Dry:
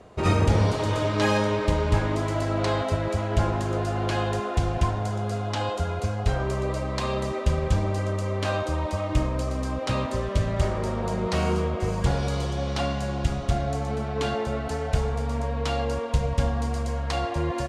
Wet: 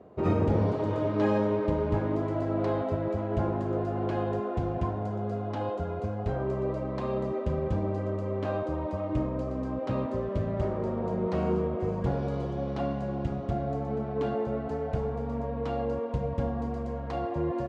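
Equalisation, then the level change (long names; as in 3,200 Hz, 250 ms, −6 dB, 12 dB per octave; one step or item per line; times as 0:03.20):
resonant band-pass 310 Hz, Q 0.66
0.0 dB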